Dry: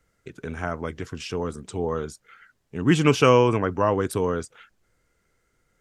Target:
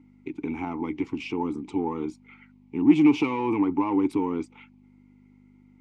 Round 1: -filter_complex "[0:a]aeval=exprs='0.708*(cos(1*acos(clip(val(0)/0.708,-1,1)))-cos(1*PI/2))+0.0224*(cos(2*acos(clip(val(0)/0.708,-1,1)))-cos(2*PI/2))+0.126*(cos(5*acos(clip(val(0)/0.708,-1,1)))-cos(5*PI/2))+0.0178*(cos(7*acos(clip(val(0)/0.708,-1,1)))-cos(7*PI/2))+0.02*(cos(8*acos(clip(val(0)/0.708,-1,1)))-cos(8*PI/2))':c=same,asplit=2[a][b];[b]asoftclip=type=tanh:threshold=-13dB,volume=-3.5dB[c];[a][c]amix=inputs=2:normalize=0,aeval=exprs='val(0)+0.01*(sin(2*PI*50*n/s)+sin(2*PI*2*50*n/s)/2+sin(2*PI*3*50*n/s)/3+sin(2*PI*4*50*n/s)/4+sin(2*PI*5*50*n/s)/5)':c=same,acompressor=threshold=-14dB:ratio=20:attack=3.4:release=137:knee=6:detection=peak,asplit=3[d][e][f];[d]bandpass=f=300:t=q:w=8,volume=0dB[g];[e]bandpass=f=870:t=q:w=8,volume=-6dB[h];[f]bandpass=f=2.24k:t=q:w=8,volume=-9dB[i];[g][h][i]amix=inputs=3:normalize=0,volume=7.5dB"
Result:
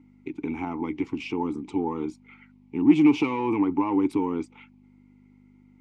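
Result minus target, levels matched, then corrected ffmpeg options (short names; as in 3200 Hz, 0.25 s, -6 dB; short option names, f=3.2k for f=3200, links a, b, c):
soft clip: distortion -6 dB
-filter_complex "[0:a]aeval=exprs='0.708*(cos(1*acos(clip(val(0)/0.708,-1,1)))-cos(1*PI/2))+0.0224*(cos(2*acos(clip(val(0)/0.708,-1,1)))-cos(2*PI/2))+0.126*(cos(5*acos(clip(val(0)/0.708,-1,1)))-cos(5*PI/2))+0.0178*(cos(7*acos(clip(val(0)/0.708,-1,1)))-cos(7*PI/2))+0.02*(cos(8*acos(clip(val(0)/0.708,-1,1)))-cos(8*PI/2))':c=same,asplit=2[a][b];[b]asoftclip=type=tanh:threshold=-19.5dB,volume=-3.5dB[c];[a][c]amix=inputs=2:normalize=0,aeval=exprs='val(0)+0.01*(sin(2*PI*50*n/s)+sin(2*PI*2*50*n/s)/2+sin(2*PI*3*50*n/s)/3+sin(2*PI*4*50*n/s)/4+sin(2*PI*5*50*n/s)/5)':c=same,acompressor=threshold=-14dB:ratio=20:attack=3.4:release=137:knee=6:detection=peak,asplit=3[d][e][f];[d]bandpass=f=300:t=q:w=8,volume=0dB[g];[e]bandpass=f=870:t=q:w=8,volume=-6dB[h];[f]bandpass=f=2.24k:t=q:w=8,volume=-9dB[i];[g][h][i]amix=inputs=3:normalize=0,volume=7.5dB"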